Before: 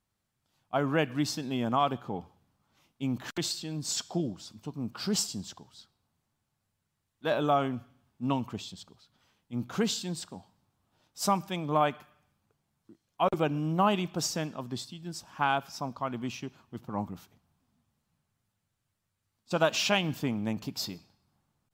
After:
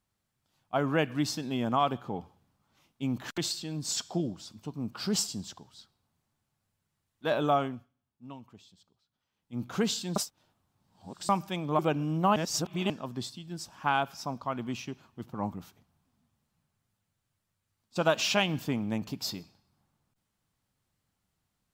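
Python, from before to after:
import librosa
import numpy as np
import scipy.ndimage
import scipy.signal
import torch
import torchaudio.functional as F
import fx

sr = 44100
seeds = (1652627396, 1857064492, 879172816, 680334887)

y = fx.edit(x, sr, fx.fade_down_up(start_s=7.55, length_s=2.11, db=-16.0, fade_s=0.35),
    fx.reverse_span(start_s=10.16, length_s=1.13),
    fx.cut(start_s=11.79, length_s=1.55),
    fx.reverse_span(start_s=13.91, length_s=0.54), tone=tone)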